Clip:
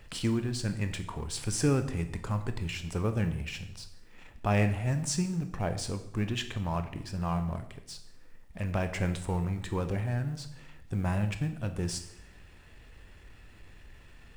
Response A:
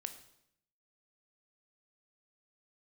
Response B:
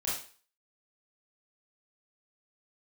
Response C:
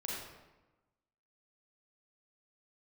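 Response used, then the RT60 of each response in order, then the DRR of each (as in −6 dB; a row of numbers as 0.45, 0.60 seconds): A; 0.75, 0.40, 1.1 seconds; 8.0, −7.5, −5.0 decibels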